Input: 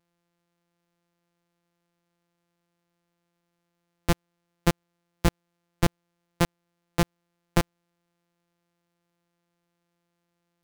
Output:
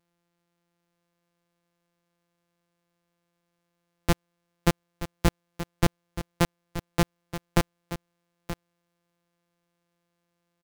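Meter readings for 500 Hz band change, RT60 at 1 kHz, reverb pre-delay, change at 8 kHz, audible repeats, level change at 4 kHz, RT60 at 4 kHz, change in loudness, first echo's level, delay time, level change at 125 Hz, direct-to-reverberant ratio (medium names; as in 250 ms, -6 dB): +0.5 dB, no reverb, no reverb, +0.5 dB, 1, +0.5 dB, no reverb, -1.0 dB, -12.0 dB, 927 ms, +0.5 dB, no reverb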